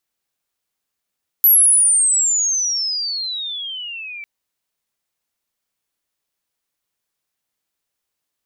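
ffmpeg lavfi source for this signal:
-f lavfi -i "aevalsrc='pow(10,(-7.5-22*t/2.8)/20)*sin(2*PI*12000*2.8/log(2300/12000)*(exp(log(2300/12000)*t/2.8)-1))':d=2.8:s=44100"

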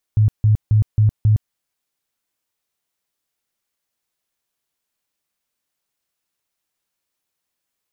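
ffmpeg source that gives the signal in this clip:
-f lavfi -i "aevalsrc='0.316*sin(2*PI*107*mod(t,0.27))*lt(mod(t,0.27),12/107)':d=1.35:s=44100"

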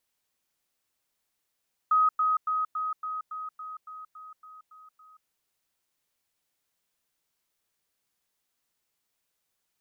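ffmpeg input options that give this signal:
-f lavfi -i "aevalsrc='pow(10,(-18.5-3*floor(t/0.28))/20)*sin(2*PI*1260*t)*clip(min(mod(t,0.28),0.18-mod(t,0.28))/0.005,0,1)':d=3.36:s=44100"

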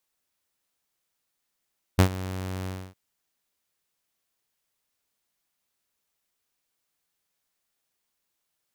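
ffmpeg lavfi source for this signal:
-f lavfi -i "aevalsrc='0.316*(2*mod(93.5*t,1)-1)':d=0.962:s=44100,afade=t=in:d=0.016,afade=t=out:st=0.016:d=0.087:silence=0.126,afade=t=out:st=0.69:d=0.272"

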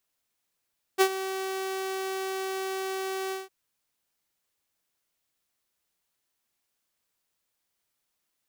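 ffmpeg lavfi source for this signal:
-f lavfi -i "aevalsrc='0.211*(2*mod(382*t,1)-1)':d=2.507:s=44100,afade=t=in:d=0.032,afade=t=out:st=0.032:d=0.069:silence=0.2,afade=t=out:st=2.34:d=0.167"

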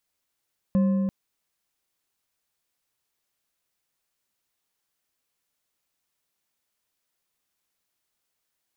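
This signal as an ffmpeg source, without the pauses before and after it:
-f lavfi -i "aevalsrc='0.141*pow(10,-3*t/3.39)*sin(2*PI*194*t)+0.0355*pow(10,-3*t/2.501)*sin(2*PI*534.9*t)+0.00891*pow(10,-3*t/2.044)*sin(2*PI*1048.4*t)+0.00224*pow(10,-3*t/1.758)*sin(2*PI*1733*t)+0.000562*pow(10,-3*t/1.558)*sin(2*PI*2588*t)':d=0.34:s=44100"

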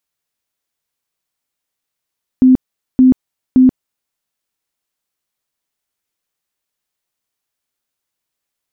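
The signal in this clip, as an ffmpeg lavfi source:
-f lavfi -i "aevalsrc='0.631*sin(2*PI*257*mod(t,0.57))*lt(mod(t,0.57),34/257)':d=1.71:s=44100"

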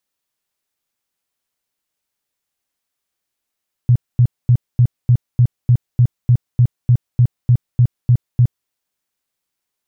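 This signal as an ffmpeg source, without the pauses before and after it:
-f lavfi -i "aevalsrc='0.447*sin(2*PI*122*mod(t,0.3))*lt(mod(t,0.3),8/122)':d=4.8:s=44100"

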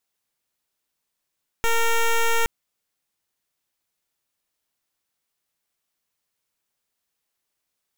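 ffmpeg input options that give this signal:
-f lavfi -i "aevalsrc='0.112*(2*lt(mod(460*t,1),0.1)-1)':d=0.82:s=44100"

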